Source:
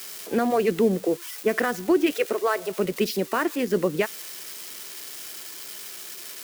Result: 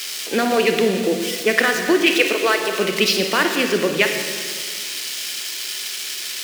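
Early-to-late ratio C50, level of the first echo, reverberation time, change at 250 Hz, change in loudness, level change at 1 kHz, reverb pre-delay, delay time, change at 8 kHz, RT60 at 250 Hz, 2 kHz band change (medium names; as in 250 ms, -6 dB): 5.0 dB, no echo, 2.1 s, +3.5 dB, +7.0 dB, +5.5 dB, 28 ms, no echo, +11.0 dB, 2.4 s, +12.0 dB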